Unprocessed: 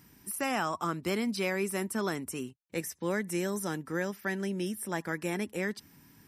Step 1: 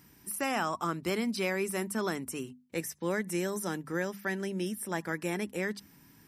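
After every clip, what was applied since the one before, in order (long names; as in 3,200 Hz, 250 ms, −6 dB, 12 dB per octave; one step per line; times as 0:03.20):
mains-hum notches 50/100/150/200/250 Hz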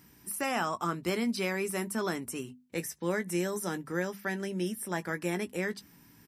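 double-tracking delay 17 ms −11 dB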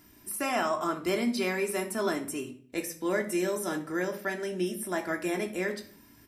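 hollow resonant body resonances 620/3,700 Hz, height 6 dB
on a send at −3 dB: convolution reverb RT60 0.50 s, pre-delay 3 ms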